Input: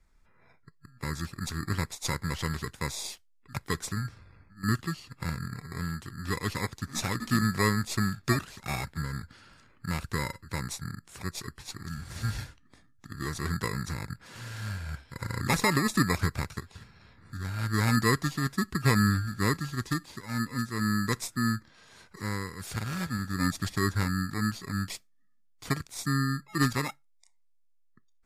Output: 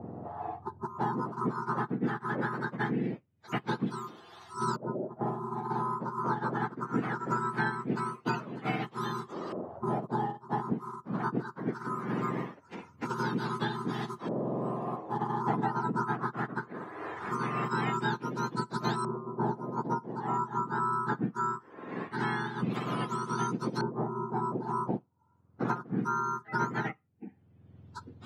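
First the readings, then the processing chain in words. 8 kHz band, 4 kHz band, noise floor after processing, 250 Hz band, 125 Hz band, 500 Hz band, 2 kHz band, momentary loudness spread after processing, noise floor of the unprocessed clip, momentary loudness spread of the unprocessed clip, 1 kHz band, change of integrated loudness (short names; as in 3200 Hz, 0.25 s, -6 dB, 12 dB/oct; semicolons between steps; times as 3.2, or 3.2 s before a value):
-15.5 dB, -10.0 dB, -61 dBFS, -2.0 dB, -6.5 dB, +2.5 dB, -4.0 dB, 9 LU, -63 dBFS, 14 LU, +5.0 dB, -2.5 dB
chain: spectrum mirrored in octaves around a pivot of 1300 Hz; LFO low-pass saw up 0.21 Hz 590–4500 Hz; three-band squash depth 100%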